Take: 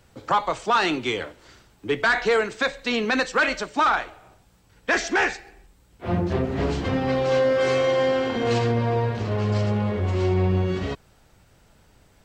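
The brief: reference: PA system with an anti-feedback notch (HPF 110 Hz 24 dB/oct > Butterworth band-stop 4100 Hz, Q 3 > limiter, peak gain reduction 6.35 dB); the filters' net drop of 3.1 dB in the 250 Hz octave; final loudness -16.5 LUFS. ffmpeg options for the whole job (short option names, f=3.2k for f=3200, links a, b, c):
-af "highpass=f=110:w=0.5412,highpass=f=110:w=1.3066,asuperstop=centerf=4100:order=8:qfactor=3,equalizer=f=250:t=o:g=-4,volume=10.5dB,alimiter=limit=-7dB:level=0:latency=1"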